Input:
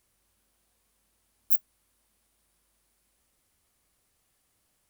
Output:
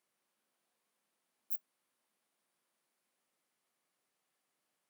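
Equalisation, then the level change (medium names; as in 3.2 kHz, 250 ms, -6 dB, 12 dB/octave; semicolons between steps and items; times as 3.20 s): high-pass 150 Hz 24 dB/octave; bass shelf 280 Hz -9.5 dB; treble shelf 4.1 kHz -9 dB; -5.5 dB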